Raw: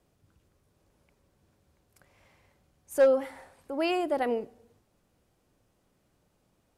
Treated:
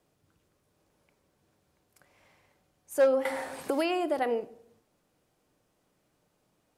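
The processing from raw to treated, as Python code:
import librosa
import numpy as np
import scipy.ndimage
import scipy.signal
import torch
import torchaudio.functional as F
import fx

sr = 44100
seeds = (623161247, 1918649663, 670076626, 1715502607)

y = fx.low_shelf(x, sr, hz=130.0, db=-10.5)
y = fx.room_shoebox(y, sr, seeds[0], volume_m3=860.0, walls='furnished', distance_m=0.48)
y = fx.band_squash(y, sr, depth_pct=100, at=(3.25, 4.19))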